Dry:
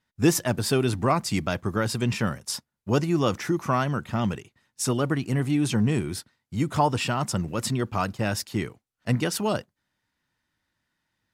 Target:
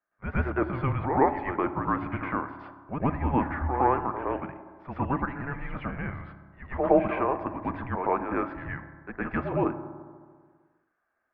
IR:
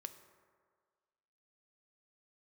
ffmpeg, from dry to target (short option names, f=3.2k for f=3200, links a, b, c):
-filter_complex "[0:a]asplit=2[a][b];[1:a]atrim=start_sample=2205,adelay=112[c];[b][c]afir=irnorm=-1:irlink=0,volume=12.5dB[d];[a][d]amix=inputs=2:normalize=0,highpass=f=450:t=q:w=0.5412,highpass=f=450:t=q:w=1.307,lowpass=f=2.2k:t=q:w=0.5176,lowpass=f=2.2k:t=q:w=0.7071,lowpass=f=2.2k:t=q:w=1.932,afreqshift=-270,volume=-5.5dB"